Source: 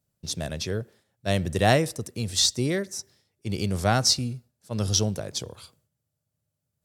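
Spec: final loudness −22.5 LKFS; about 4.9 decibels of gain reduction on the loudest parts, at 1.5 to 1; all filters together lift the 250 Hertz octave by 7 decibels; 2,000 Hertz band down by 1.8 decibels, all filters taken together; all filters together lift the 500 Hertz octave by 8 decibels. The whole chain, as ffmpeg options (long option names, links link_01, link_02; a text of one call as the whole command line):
ffmpeg -i in.wav -af "equalizer=frequency=250:width_type=o:gain=7,equalizer=frequency=500:width_type=o:gain=8.5,equalizer=frequency=2000:width_type=o:gain=-3,acompressor=threshold=-23dB:ratio=1.5,volume=2.5dB" out.wav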